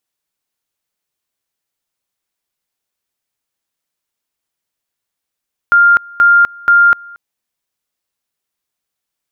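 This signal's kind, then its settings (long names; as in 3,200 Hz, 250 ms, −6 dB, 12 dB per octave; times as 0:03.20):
tone at two levels in turn 1,400 Hz −4.5 dBFS, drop 26 dB, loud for 0.25 s, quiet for 0.23 s, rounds 3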